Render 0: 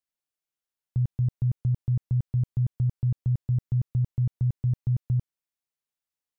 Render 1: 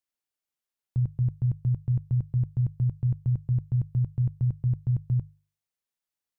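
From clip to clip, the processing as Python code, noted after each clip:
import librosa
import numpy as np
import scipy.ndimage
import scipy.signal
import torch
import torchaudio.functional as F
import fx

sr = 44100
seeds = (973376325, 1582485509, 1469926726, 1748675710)

y = fx.hum_notches(x, sr, base_hz=50, count=3)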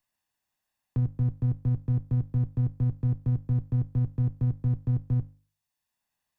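y = fx.lower_of_two(x, sr, delay_ms=1.1)
y = fx.band_squash(y, sr, depth_pct=40)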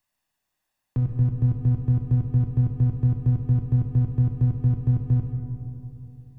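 y = fx.rev_freeverb(x, sr, rt60_s=3.1, hf_ratio=0.3, predelay_ms=10, drr_db=3.5)
y = y * librosa.db_to_amplitude(2.5)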